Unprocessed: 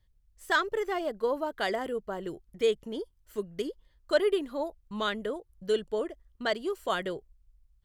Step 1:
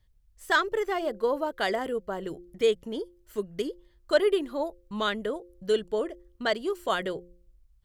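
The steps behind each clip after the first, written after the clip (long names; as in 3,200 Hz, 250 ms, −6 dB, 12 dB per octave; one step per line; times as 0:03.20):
hum removal 175.7 Hz, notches 3
level +2.5 dB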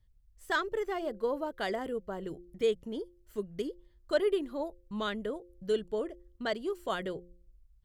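low-shelf EQ 340 Hz +7 dB
level −7.5 dB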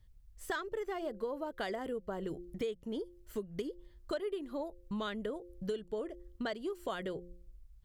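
downward compressor 6 to 1, threshold −40 dBFS, peak gain reduction 17 dB
level +5 dB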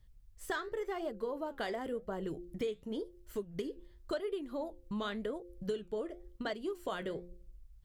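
flanger 0.92 Hz, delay 4.7 ms, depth 9.1 ms, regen −75%
level +4.5 dB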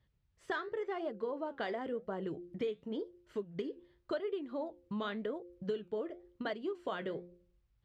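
band-pass filter 120–3,600 Hz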